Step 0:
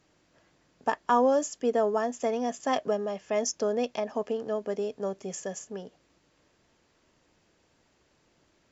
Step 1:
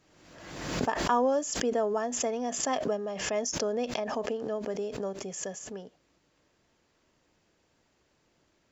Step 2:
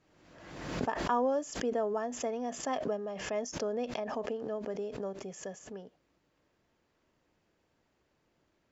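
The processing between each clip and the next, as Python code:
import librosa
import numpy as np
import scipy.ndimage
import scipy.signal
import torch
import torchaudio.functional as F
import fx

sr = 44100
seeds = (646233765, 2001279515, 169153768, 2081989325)

y1 = fx.pre_swell(x, sr, db_per_s=48.0)
y1 = y1 * 10.0 ** (-3.0 / 20.0)
y2 = fx.high_shelf(y1, sr, hz=4500.0, db=-10.0)
y2 = y2 * 10.0 ** (-3.5 / 20.0)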